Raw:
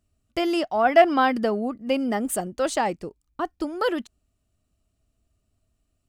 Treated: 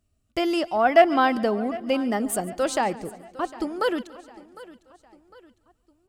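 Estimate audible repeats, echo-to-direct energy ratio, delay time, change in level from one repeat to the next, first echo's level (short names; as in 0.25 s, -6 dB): 6, -15.5 dB, 0.142 s, no steady repeat, -20.0 dB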